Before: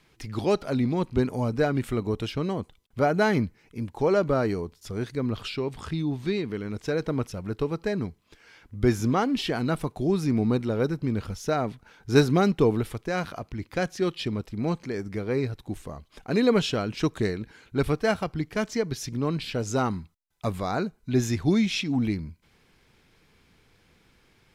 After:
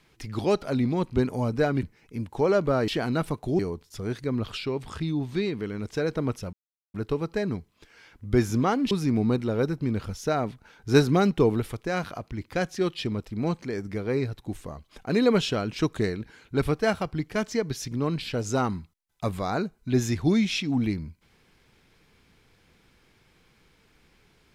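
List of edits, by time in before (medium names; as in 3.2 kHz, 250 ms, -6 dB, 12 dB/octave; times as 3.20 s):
1.83–3.45 s: delete
7.44 s: insert silence 0.41 s
9.41–10.12 s: move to 4.50 s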